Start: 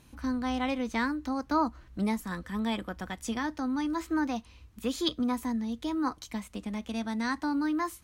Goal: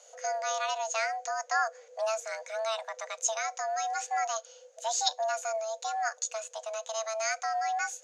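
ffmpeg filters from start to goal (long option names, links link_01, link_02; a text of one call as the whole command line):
ffmpeg -i in.wav -af "afreqshift=440,lowpass=frequency=6600:width_type=q:width=12,volume=-2dB" out.wav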